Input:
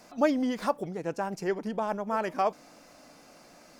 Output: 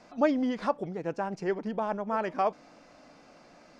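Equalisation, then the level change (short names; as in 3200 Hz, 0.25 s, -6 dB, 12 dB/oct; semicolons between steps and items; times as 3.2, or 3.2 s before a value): air absorption 94 m; high shelf 8100 Hz -4.5 dB; 0.0 dB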